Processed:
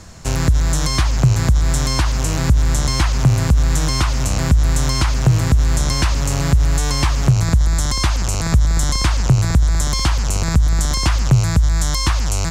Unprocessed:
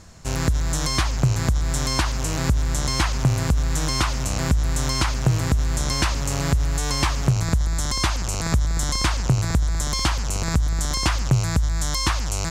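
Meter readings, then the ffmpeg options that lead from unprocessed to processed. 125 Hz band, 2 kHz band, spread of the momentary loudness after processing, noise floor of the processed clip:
+6.5 dB, +2.5 dB, 3 LU, -19 dBFS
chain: -filter_complex "[0:a]acrossover=split=170[a][b];[b]acompressor=threshold=-30dB:ratio=2[c];[a][c]amix=inputs=2:normalize=0,volume=7dB"

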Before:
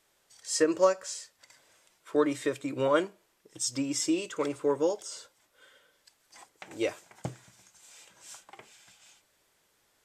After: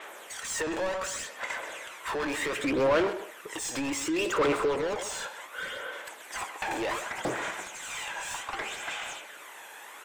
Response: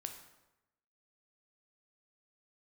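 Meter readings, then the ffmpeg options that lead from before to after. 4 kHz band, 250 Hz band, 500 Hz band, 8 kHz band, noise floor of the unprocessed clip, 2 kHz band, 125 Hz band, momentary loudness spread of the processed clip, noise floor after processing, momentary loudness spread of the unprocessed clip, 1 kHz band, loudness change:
+4.0 dB, -1.0 dB, -0.5 dB, +0.5 dB, -71 dBFS, +9.5 dB, -0.5 dB, 13 LU, -47 dBFS, 20 LU, +4.5 dB, -1.5 dB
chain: -filter_complex "[0:a]highpass=310,equalizer=f=4.8k:t=o:w=0.64:g=-15,acompressor=threshold=-30dB:ratio=4,asoftclip=type=tanh:threshold=-33.5dB,asplit=2[a][b];[b]highpass=f=720:p=1,volume=26dB,asoftclip=type=tanh:threshold=-33.5dB[c];[a][c]amix=inputs=2:normalize=0,lowpass=f=3.8k:p=1,volume=-6dB,aphaser=in_gain=1:out_gain=1:delay=1.2:decay=0.46:speed=0.67:type=sinusoidal,asplit=2[d][e];[e]adelay=130,highpass=300,lowpass=3.4k,asoftclip=type=hard:threshold=-37.5dB,volume=-8dB[f];[d][f]amix=inputs=2:normalize=0,adynamicequalizer=threshold=0.00126:dfrequency=7400:dqfactor=0.7:tfrequency=7400:tqfactor=0.7:attack=5:release=100:ratio=0.375:range=2.5:mode=cutabove:tftype=highshelf,volume=8.5dB"

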